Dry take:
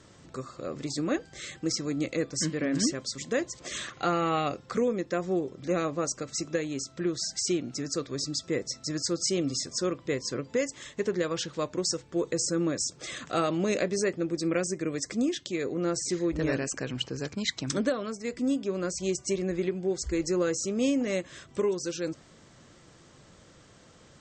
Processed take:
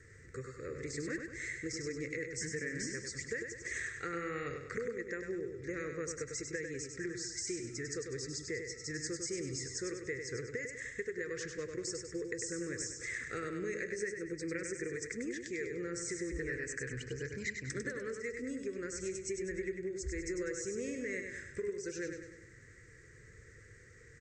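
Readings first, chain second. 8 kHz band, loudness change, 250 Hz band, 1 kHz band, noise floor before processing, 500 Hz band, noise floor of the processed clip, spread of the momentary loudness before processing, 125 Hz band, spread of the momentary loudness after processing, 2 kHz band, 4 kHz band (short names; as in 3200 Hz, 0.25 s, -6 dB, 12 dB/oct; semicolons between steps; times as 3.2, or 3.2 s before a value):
-8.0 dB, -9.5 dB, -12.5 dB, -15.5 dB, -56 dBFS, -9.5 dB, -57 dBFS, 6 LU, -9.5 dB, 5 LU, -1.5 dB, -13.5 dB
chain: EQ curve 110 Hz 0 dB, 180 Hz -14 dB, 280 Hz -14 dB, 460 Hz -1 dB, 660 Hz -30 dB, 940 Hz -27 dB, 1900 Hz +7 dB, 3100 Hz -23 dB, 6700 Hz -7 dB; compressor, threshold -38 dBFS, peak gain reduction 12 dB; on a send: feedback echo 99 ms, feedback 48%, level -6 dB; on the sum: gain +1.5 dB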